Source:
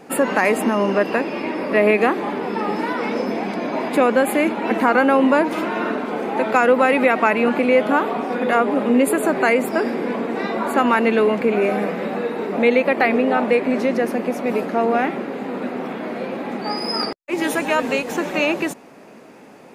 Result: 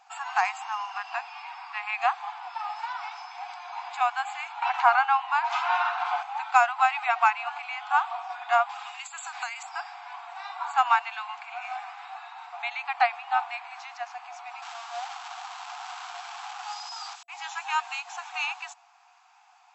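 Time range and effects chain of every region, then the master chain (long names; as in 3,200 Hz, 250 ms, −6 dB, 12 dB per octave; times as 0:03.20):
0:04.62–0:06.23: high-frequency loss of the air 78 metres + envelope flattener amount 70%
0:08.69–0:09.63: spectral tilt +4.5 dB per octave + downward compressor 12 to 1, threshold −18 dBFS
0:14.62–0:17.23: sign of each sample alone + high-shelf EQ 3,000 Hz −8 dB
whole clip: brick-wall band-pass 690–7,900 Hz; parametric band 1,900 Hz −9 dB 0.46 octaves; expander for the loud parts 1.5 to 1, over −30 dBFS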